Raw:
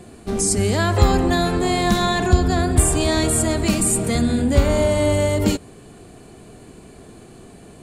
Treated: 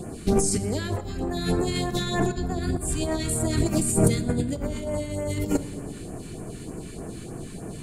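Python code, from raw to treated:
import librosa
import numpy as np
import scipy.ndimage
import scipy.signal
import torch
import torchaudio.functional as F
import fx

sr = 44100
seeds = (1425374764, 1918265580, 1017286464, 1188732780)

y = fx.over_compress(x, sr, threshold_db=-23.0, ratio=-0.5)
y = fx.phaser_stages(y, sr, stages=2, low_hz=620.0, high_hz=4000.0, hz=3.3, feedback_pct=5)
y = fx.room_shoebox(y, sr, seeds[0], volume_m3=2500.0, walls='mixed', distance_m=0.6)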